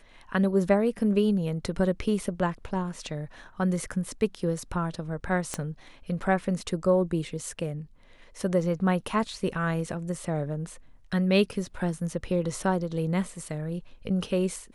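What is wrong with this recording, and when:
5.54 pop -15 dBFS

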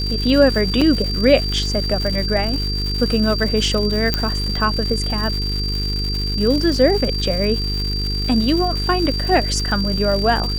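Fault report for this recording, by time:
buzz 50 Hz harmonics 9 -23 dBFS
crackle 250/s -24 dBFS
tone 4700 Hz -24 dBFS
0.81–0.82 gap 5.3 ms
4.14 pop -3 dBFS

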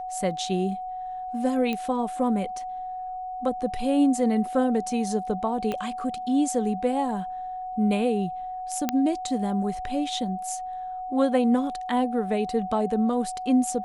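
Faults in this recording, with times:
tone 740 Hz -31 dBFS
1.73 pop -16 dBFS
5.72 pop -16 dBFS
8.89 pop -9 dBFS

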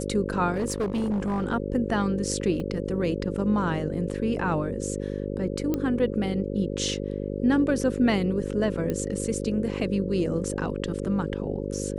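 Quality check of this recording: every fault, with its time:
buzz 50 Hz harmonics 11 -31 dBFS
0.54–1.46 clipped -22.5 dBFS
2.6 gap 2.5 ms
5.74 pop -14 dBFS
8.9 pop -16 dBFS

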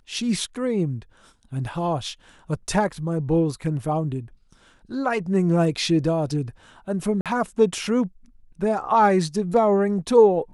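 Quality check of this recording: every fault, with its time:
7.21–7.26 gap 47 ms

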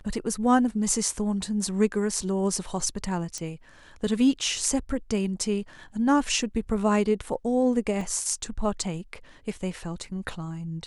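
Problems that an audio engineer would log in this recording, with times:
3.38 pop -20 dBFS
8.01 gap 2.4 ms

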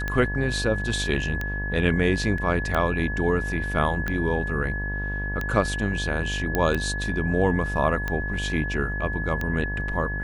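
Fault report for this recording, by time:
buzz 50 Hz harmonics 22 -30 dBFS
tick 45 rpm -14 dBFS
tone 1700 Hz -30 dBFS
2.38 gap 3.1 ms
6.55 pop -9 dBFS

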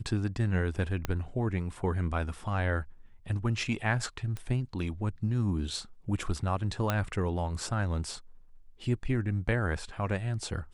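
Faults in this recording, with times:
1.05 pop -16 dBFS
4.37 pop -24 dBFS
6.9 pop -13 dBFS

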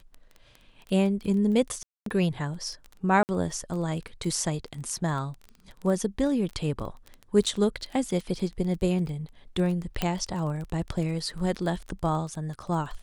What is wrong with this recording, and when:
crackle 18/s -33 dBFS
1.83–2.06 gap 0.233 s
3.23–3.29 gap 59 ms
7.46–7.47 gap 5.4 ms
10.02 pop -11 dBFS

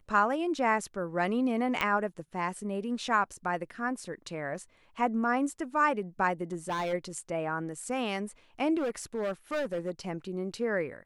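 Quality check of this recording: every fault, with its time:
1.81 pop -15 dBFS
6.52–6.94 clipped -28.5 dBFS
8.77–9.91 clipped -27.5 dBFS

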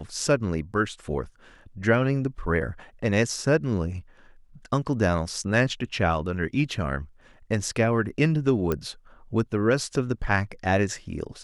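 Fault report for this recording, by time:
8.72 pop -13 dBFS

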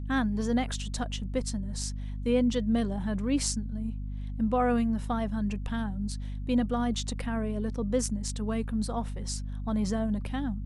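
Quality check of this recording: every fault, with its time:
hum 50 Hz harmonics 5 -35 dBFS

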